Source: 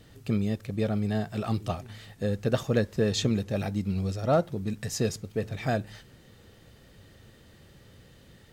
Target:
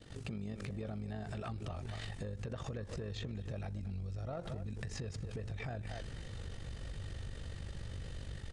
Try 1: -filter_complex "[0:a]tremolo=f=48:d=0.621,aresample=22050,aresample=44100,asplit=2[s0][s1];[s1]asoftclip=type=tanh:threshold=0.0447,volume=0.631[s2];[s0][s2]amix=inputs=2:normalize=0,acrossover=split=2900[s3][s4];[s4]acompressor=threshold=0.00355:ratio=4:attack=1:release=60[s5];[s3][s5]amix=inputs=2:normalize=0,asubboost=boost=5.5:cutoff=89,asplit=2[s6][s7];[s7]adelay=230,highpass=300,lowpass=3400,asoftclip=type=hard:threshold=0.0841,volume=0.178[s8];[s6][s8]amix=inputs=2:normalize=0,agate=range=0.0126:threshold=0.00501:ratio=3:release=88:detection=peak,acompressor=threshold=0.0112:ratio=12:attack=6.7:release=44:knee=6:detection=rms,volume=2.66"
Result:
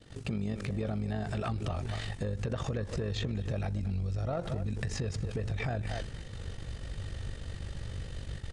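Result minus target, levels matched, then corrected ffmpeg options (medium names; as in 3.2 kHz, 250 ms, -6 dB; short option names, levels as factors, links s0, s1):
compression: peak gain reduction -8 dB
-filter_complex "[0:a]tremolo=f=48:d=0.621,aresample=22050,aresample=44100,asplit=2[s0][s1];[s1]asoftclip=type=tanh:threshold=0.0447,volume=0.631[s2];[s0][s2]amix=inputs=2:normalize=0,acrossover=split=2900[s3][s4];[s4]acompressor=threshold=0.00355:ratio=4:attack=1:release=60[s5];[s3][s5]amix=inputs=2:normalize=0,asubboost=boost=5.5:cutoff=89,asplit=2[s6][s7];[s7]adelay=230,highpass=300,lowpass=3400,asoftclip=type=hard:threshold=0.0841,volume=0.178[s8];[s6][s8]amix=inputs=2:normalize=0,agate=range=0.0126:threshold=0.00501:ratio=3:release=88:detection=peak,acompressor=threshold=0.00398:ratio=12:attack=6.7:release=44:knee=6:detection=rms,volume=2.66"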